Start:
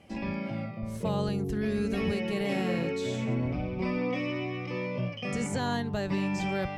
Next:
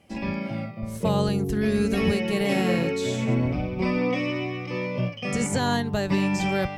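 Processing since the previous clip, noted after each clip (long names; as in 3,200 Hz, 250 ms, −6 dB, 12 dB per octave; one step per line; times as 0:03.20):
high-shelf EQ 7,400 Hz +8 dB
expander for the loud parts 1.5 to 1, over −46 dBFS
level +7.5 dB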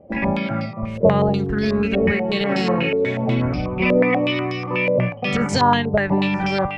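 speech leveller within 4 dB 2 s
low-pass on a step sequencer 8.2 Hz 570–5,000 Hz
level +3.5 dB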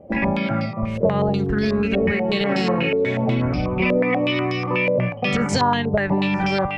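downward compressor 2.5 to 1, threshold −21 dBFS, peak gain reduction 8.5 dB
level +3 dB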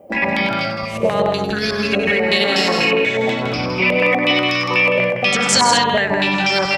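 RIAA equalisation recording
multi-tap delay 98/163/226 ms −9.5/−5.5/−9 dB
level +4 dB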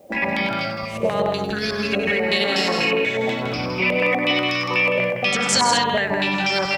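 bit-depth reduction 10 bits, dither triangular
level −4 dB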